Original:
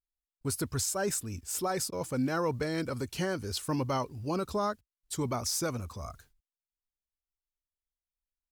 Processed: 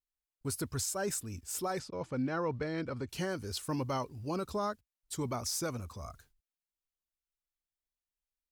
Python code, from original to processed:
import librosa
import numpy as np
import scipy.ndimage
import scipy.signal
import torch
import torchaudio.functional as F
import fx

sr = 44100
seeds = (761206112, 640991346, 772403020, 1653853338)

y = fx.lowpass(x, sr, hz=3600.0, slope=12, at=(1.79, 3.09))
y = F.gain(torch.from_numpy(y), -3.5).numpy()